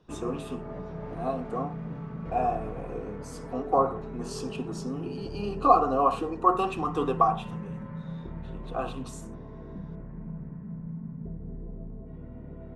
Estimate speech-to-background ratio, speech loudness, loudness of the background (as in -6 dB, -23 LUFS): 11.0 dB, -28.5 LUFS, -39.5 LUFS